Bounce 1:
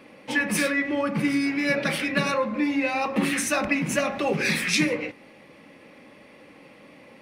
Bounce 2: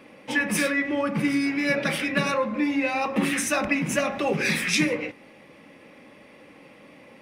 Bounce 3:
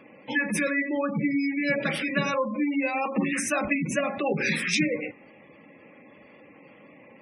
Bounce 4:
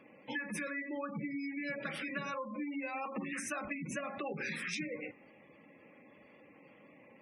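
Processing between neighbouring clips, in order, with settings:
band-stop 4.3 kHz, Q 14
spectral gate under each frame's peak -20 dB strong; trim -1.5 dB
dynamic bell 1.3 kHz, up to +6 dB, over -42 dBFS, Q 1.6; compression 4:1, threshold -29 dBFS, peak gain reduction 9.5 dB; trim -8 dB

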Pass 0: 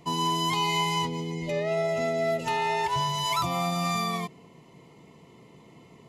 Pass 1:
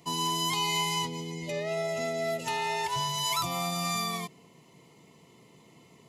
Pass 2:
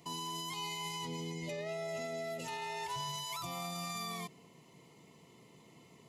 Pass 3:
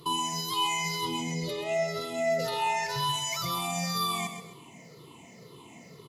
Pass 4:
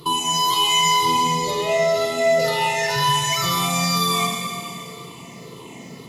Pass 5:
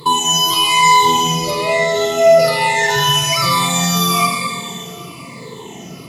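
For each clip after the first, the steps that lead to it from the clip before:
high-pass 70 Hz; treble shelf 3.6 kHz +10.5 dB; trim -5 dB
peak limiter -29 dBFS, peak gain reduction 11 dB; trim -3 dB
drifting ripple filter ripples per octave 0.61, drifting -2 Hz, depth 16 dB; feedback delay 131 ms, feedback 35%, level -9 dB; trim +6.5 dB
reverberation RT60 2.5 s, pre-delay 34 ms, DRR 1 dB; trim +8 dB
drifting ripple filter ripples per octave 0.98, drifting -1.1 Hz, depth 10 dB; trim +4.5 dB

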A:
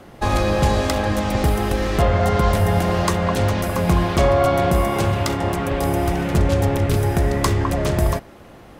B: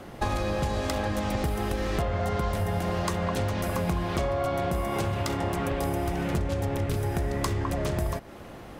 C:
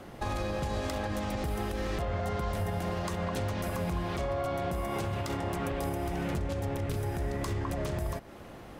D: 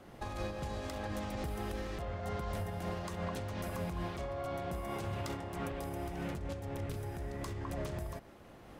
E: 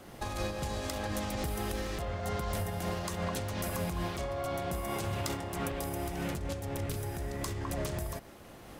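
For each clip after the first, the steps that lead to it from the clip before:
compression 6:1, threshold -25 dBFS, peak gain reduction 12.5 dB
peak limiter -20 dBFS, peak gain reduction 6 dB; trim -3.5 dB
random flutter of the level, depth 55%; trim -3.5 dB
treble shelf 4.2 kHz +9.5 dB; trim +3.5 dB

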